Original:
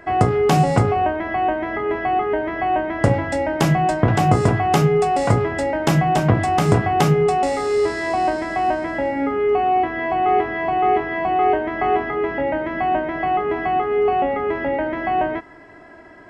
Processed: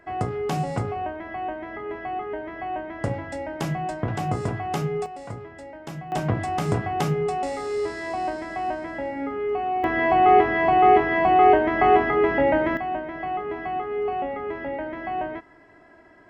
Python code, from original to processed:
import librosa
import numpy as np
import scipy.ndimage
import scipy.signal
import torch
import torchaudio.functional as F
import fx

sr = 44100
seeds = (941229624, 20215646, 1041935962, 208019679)

y = fx.gain(x, sr, db=fx.steps((0.0, -10.5), (5.06, -19.0), (6.12, -8.0), (9.84, 2.0), (12.77, -8.5)))